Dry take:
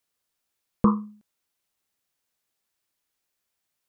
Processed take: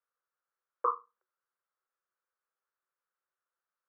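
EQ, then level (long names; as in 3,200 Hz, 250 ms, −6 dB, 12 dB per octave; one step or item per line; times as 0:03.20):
Chebyshev high-pass with heavy ripple 360 Hz, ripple 9 dB
low-pass with resonance 1,300 Hz, resonance Q 2
−4.0 dB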